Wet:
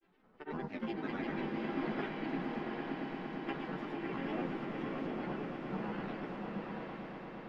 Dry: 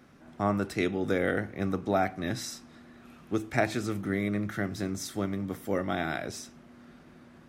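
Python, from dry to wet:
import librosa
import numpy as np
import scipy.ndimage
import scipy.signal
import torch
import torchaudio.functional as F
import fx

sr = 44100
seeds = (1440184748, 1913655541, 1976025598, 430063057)

p1 = fx.spec_clip(x, sr, under_db=23)
p2 = fx.peak_eq(p1, sr, hz=270.0, db=15.0, octaves=0.39)
p3 = fx.resonator_bank(p2, sr, root=56, chord='major', decay_s=0.23)
p4 = fx.sample_hold(p3, sr, seeds[0], rate_hz=7600.0, jitter_pct=0)
p5 = p3 + (p4 * 10.0 ** (-5.5 / 20.0))
p6 = fx.granulator(p5, sr, seeds[1], grain_ms=100.0, per_s=20.0, spray_ms=100.0, spread_st=7)
p7 = fx.air_absorb(p6, sr, metres=300.0)
p8 = p7 + fx.echo_swell(p7, sr, ms=114, loudest=8, wet_db=-14, dry=0)
p9 = fx.rev_bloom(p8, sr, seeds[2], attack_ms=810, drr_db=0.5)
y = p9 * 10.0 ** (-1.5 / 20.0)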